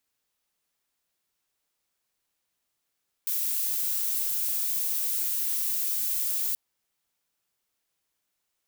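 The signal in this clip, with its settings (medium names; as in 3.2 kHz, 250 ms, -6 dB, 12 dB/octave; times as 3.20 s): noise violet, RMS -28 dBFS 3.28 s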